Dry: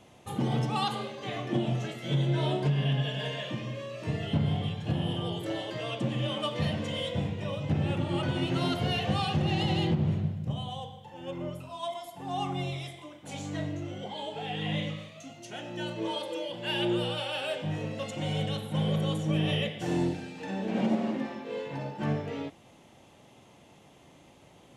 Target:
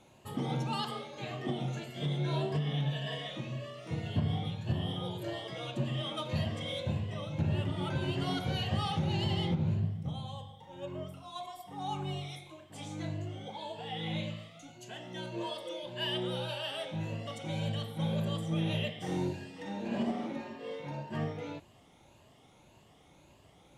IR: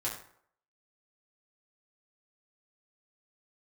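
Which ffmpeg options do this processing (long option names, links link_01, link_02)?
-af "afftfilt=real='re*pow(10,7/40*sin(2*PI*(1.4*log(max(b,1)*sr/1024/100)/log(2)-(1.7)*(pts-256)/sr)))':imag='im*pow(10,7/40*sin(2*PI*(1.4*log(max(b,1)*sr/1024/100)/log(2)-(1.7)*(pts-256)/sr)))':win_size=1024:overlap=0.75,asetrate=45938,aresample=44100,asubboost=boost=2:cutoff=120,volume=-5dB"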